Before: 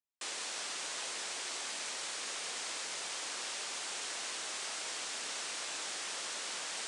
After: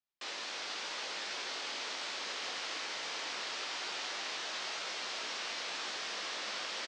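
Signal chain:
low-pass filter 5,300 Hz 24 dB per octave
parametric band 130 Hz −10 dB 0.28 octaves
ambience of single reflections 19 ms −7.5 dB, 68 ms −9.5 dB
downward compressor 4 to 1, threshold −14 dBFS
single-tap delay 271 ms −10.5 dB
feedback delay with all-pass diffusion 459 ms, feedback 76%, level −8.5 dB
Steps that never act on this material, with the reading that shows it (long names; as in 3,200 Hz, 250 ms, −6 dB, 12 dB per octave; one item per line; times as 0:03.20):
downward compressor, threshold −14 dBFS: peak of its input −28.5 dBFS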